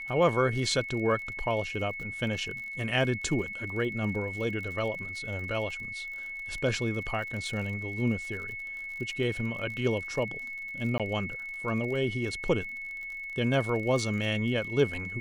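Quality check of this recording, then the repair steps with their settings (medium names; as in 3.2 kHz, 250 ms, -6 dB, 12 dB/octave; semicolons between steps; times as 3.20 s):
crackle 49 per s -38 dBFS
whine 2.2 kHz -36 dBFS
10.98–11.00 s: dropout 17 ms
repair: de-click; band-stop 2.2 kHz, Q 30; interpolate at 10.98 s, 17 ms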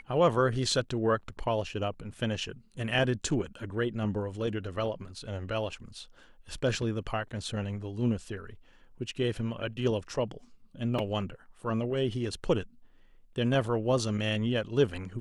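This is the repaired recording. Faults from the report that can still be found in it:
nothing left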